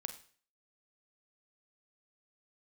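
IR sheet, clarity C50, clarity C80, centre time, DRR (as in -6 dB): 11.5 dB, 15.0 dB, 10 ms, 7.5 dB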